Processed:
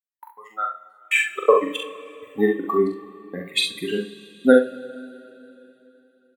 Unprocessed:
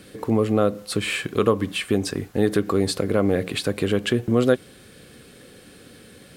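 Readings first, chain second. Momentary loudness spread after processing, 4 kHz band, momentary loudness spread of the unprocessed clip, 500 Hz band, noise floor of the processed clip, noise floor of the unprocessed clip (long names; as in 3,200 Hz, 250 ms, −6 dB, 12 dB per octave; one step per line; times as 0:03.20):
20 LU, +1.5 dB, 5 LU, +0.5 dB, −62 dBFS, −48 dBFS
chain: spectral dynamics exaggerated over time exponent 3
noise gate with hold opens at −45 dBFS
tilt shelving filter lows −6.5 dB, about 650 Hz
gate pattern "xxx.xxx....." 162 BPM −60 dB
high-pass filter sweep 1,800 Hz → 240 Hz, 0:00.77–0:01.79
ambience of single reflections 43 ms −4 dB, 67 ms −8 dB
coupled-rooms reverb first 0.32 s, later 3.4 s, from −18 dB, DRR 6 dB
level +4.5 dB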